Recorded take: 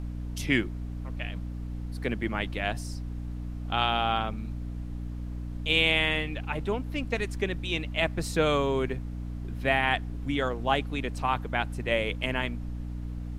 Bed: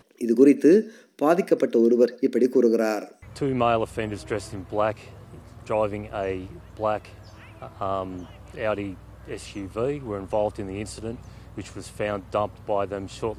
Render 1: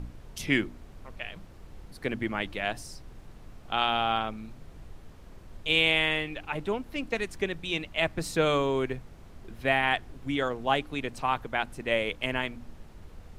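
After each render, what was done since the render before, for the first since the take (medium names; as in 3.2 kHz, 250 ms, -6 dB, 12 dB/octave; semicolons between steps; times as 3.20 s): de-hum 60 Hz, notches 5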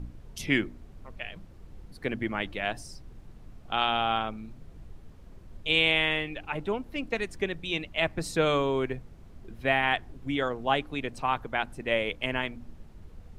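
noise reduction 6 dB, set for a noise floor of -49 dBFS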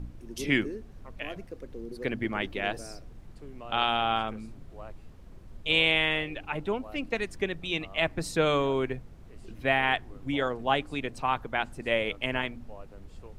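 add bed -22.5 dB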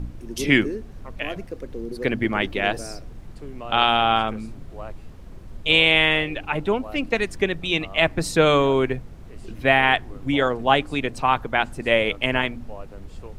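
trim +8 dB; peak limiter -3 dBFS, peak gain reduction 1.5 dB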